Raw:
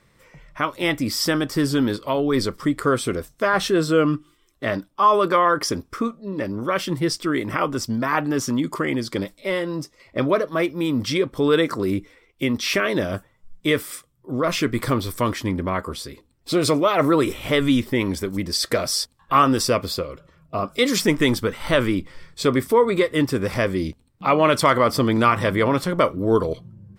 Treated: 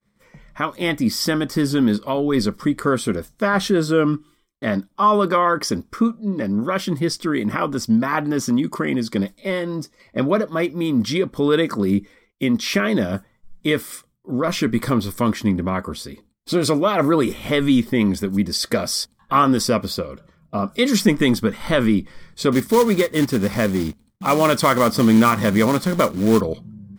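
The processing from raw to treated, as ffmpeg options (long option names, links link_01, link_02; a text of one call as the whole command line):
ffmpeg -i in.wav -filter_complex "[0:a]asettb=1/sr,asplit=3[link_01][link_02][link_03];[link_01]atrim=end=22.524[link_04];[link_02]atrim=start=22.52:end=26.41,asetpts=PTS-STARTPTS,afade=type=in:duration=0.004:curve=qsin,afade=type=out:start_time=3.886:duration=0.004:curve=qsin,acrusher=bits=3:mode=log:mix=0:aa=0.000001[link_05];[link_03]atrim=start=26.406[link_06];[link_04][link_05]acrossfade=duration=0.004:curve1=hsin:curve2=qsin[link_07];[link_07][link_06]acrossfade=duration=0.004:curve1=qsin:curve2=hsin,bandreject=frequency=2700:width=11,agate=range=-33dB:threshold=-50dB:ratio=3:detection=peak,equalizer=frequency=210:width=4.8:gain=13" out.wav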